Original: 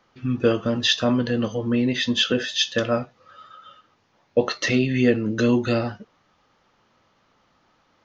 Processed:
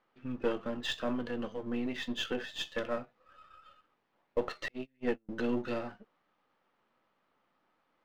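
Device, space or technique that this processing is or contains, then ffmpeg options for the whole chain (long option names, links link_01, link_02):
crystal radio: -filter_complex "[0:a]highpass=200,lowpass=2900,aeval=exprs='if(lt(val(0),0),0.447*val(0),val(0))':channel_layout=same,asettb=1/sr,asplit=3[link_01][link_02][link_03];[link_01]atrim=end=4.684[link_04];[link_02]atrim=start=4.68:end=5.29,asetpts=PTS-STARTPTS,afade=type=in:duration=0.004:curve=qsin,afade=type=out:start_time=0.606:duration=0.004:curve=qsin,agate=range=-37dB:threshold=-20dB:ratio=16:detection=peak[link_05];[link_03]atrim=start=5.286[link_06];[link_04][link_05]acrossfade=duration=0.004:curve1=hsin:curve2=qsin[link_07];[link_07][link_06]acrossfade=duration=0.004:curve1=qsin:curve2=hsin,volume=-9dB"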